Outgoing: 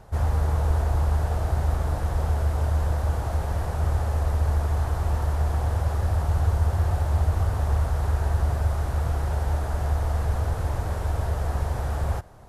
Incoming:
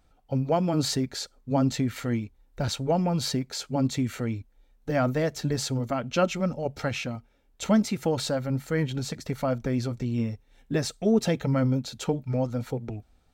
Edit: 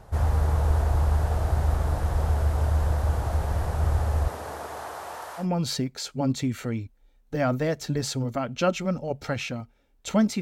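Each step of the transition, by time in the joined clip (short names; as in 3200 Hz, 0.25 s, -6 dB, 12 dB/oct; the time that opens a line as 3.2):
outgoing
4.27–5.47 HPF 230 Hz -> 890 Hz
5.42 switch to incoming from 2.97 s, crossfade 0.10 s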